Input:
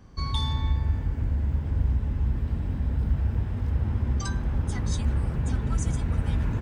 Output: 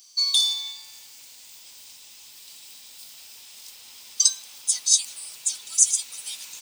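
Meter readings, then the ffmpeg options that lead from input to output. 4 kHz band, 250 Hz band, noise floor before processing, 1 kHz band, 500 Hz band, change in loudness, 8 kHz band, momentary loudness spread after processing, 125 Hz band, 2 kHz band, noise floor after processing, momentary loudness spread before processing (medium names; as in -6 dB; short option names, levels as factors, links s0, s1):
+15.5 dB, under -35 dB, -32 dBFS, under -10 dB, under -20 dB, +6.0 dB, +23.5 dB, 21 LU, under -40 dB, -4.5 dB, -48 dBFS, 2 LU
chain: -af "highpass=1300,highshelf=f=2100:t=q:w=3:g=8,aexciter=amount=12:drive=2.6:freq=4100,volume=0.501"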